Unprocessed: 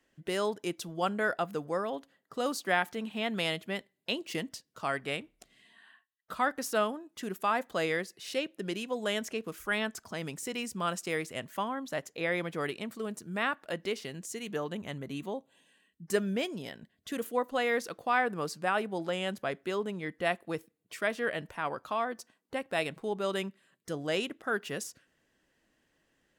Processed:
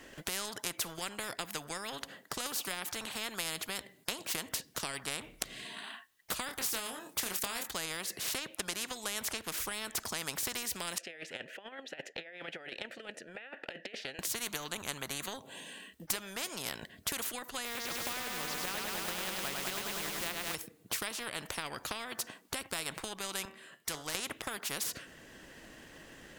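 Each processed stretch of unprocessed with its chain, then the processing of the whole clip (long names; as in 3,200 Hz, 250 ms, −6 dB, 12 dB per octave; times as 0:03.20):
0:06.46–0:07.68: high-shelf EQ 4,400 Hz +7 dB + double-tracking delay 26 ms −6 dB
0:10.98–0:14.19: bass and treble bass −8 dB, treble −3 dB + compressor whose output falls as the input rises −39 dBFS, ratio −0.5 + formant filter e
0:17.65–0:20.55: low-pass filter 4,300 Hz 24 dB per octave + floating-point word with a short mantissa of 4 bits + feedback echo at a low word length 101 ms, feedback 80%, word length 9 bits, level −5 dB
0:23.45–0:24.15: bass and treble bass −7 dB, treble −1 dB + tuned comb filter 77 Hz, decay 0.33 s + hard clipping −35 dBFS
whole clip: transient designer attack +6 dB, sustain −1 dB; downward compressor 3 to 1, threshold −33 dBFS; every bin compressed towards the loudest bin 4 to 1; level +7 dB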